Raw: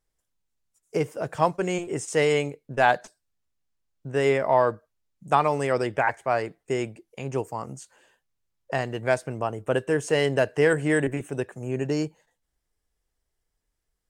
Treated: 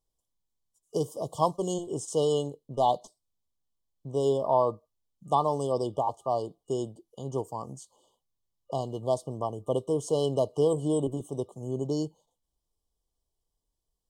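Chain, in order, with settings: 0.96–1.74 high shelf 4100 Hz +7.5 dB; FFT band-reject 1200–2900 Hz; gain -3.5 dB

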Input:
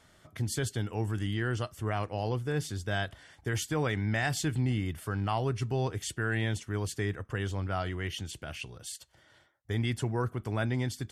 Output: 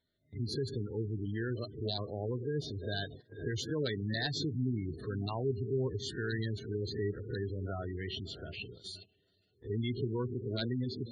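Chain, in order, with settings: spectral swells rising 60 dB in 0.38 s; 3.68–4.9 low shelf 61 Hz -3 dB; de-hum 379.8 Hz, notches 7; wrapped overs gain 18 dB; thirty-one-band EQ 250 Hz +4 dB, 400 Hz +7 dB, 800 Hz -5 dB, 1250 Hz -5 dB, 4000 Hz +12 dB, 8000 Hz -9 dB; diffused feedback echo 0.484 s, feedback 58%, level -14 dB; spectral gate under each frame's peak -15 dB strong; gate -42 dBFS, range -18 dB; gain -5.5 dB

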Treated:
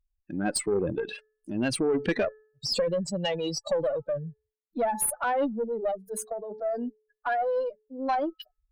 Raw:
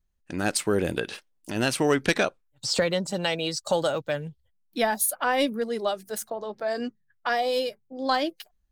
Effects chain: spectral contrast raised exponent 2.4; de-hum 431 Hz, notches 4; tube stage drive 18 dB, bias 0.25

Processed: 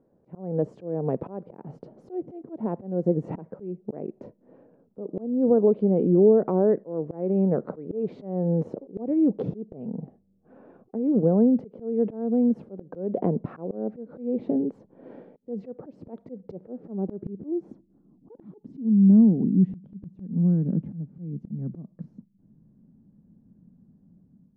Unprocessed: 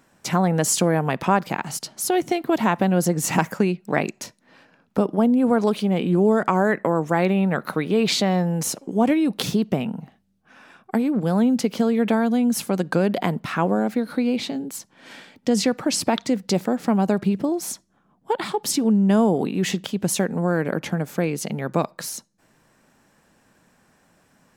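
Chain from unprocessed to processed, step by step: compressor 1.5:1, threshold -26 dBFS, peak gain reduction 5 dB; low-pass sweep 470 Hz -> 200 Hz, 16.56–19.77; AGC gain up to 9 dB; auto swell 0.299 s; gain -6 dB

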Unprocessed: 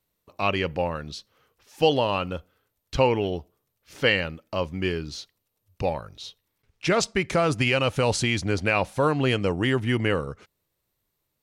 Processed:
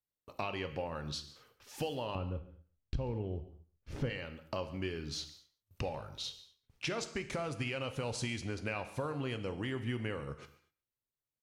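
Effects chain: gate with hold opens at -55 dBFS; 2.15–4.1 tilt -4.5 dB/oct; compressor 6:1, threshold -36 dBFS, peak gain reduction 26 dB; echo 0.14 s -20.5 dB; non-linear reverb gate 0.27 s falling, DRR 9 dB

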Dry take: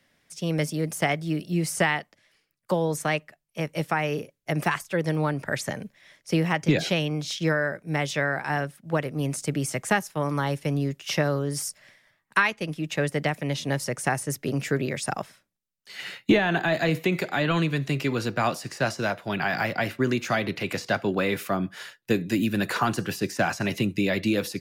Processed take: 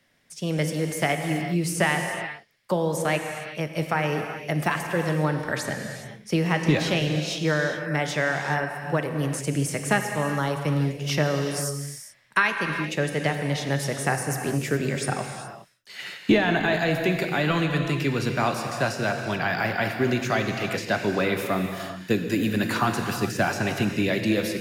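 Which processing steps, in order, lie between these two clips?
non-linear reverb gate 0.44 s flat, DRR 4 dB

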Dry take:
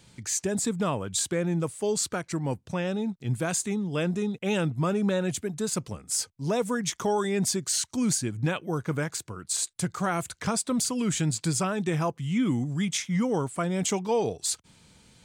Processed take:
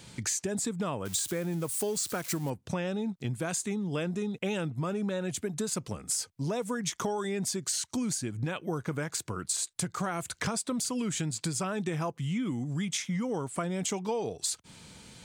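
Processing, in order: 1.05–2.5 switching spikes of -30.5 dBFS; compressor 10:1, threshold -35 dBFS, peak gain reduction 13.5 dB; low shelf 73 Hz -6.5 dB; gain +6.5 dB

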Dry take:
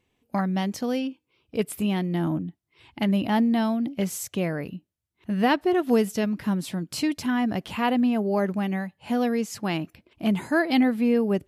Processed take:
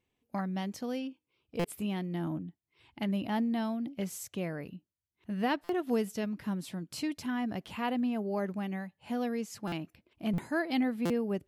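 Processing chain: stuck buffer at 1.59/5.64/9.67/10.33/11.05, samples 256, times 8; gain -9 dB

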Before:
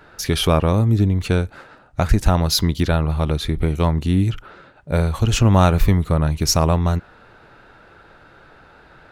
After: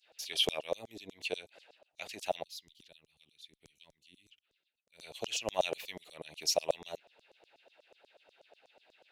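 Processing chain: EQ curve 470 Hz 0 dB, 670 Hz -3 dB, 1300 Hz -26 dB, 2700 Hz -1 dB, 6100 Hz -8 dB; LFO high-pass saw down 8.2 Hz 530–6800 Hz; 2.43–5.01 passive tone stack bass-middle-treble 6-0-2; gain -7.5 dB

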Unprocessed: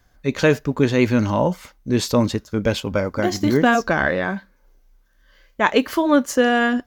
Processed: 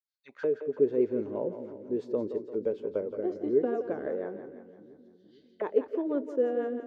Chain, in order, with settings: opening faded in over 0.89 s; rotary speaker horn 6.3 Hz; auto-wah 420–4300 Hz, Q 5.4, down, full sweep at -23.5 dBFS; on a send: split-band echo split 300 Hz, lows 0.451 s, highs 0.171 s, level -10 dB

